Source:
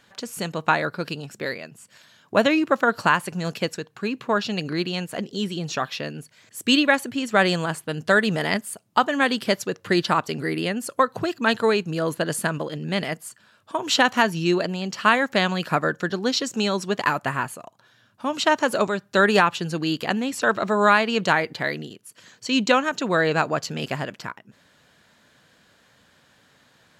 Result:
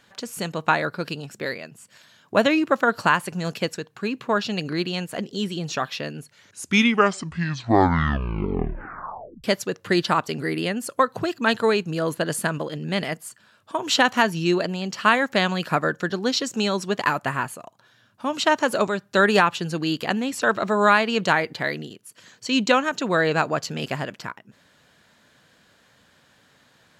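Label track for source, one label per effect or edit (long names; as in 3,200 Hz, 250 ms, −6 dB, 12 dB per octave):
6.170000	6.170000	tape stop 3.27 s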